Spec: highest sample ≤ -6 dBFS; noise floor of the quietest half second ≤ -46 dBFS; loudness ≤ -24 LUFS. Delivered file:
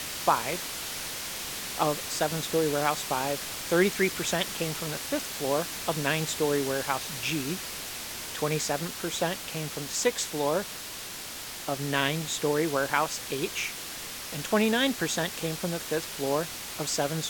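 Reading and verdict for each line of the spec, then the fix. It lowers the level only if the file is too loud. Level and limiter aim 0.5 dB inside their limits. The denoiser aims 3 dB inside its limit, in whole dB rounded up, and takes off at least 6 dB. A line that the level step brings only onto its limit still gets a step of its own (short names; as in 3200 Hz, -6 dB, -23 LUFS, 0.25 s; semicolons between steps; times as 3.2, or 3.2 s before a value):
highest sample -9.5 dBFS: OK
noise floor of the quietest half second -39 dBFS: fail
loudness -29.0 LUFS: OK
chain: denoiser 10 dB, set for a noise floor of -39 dBFS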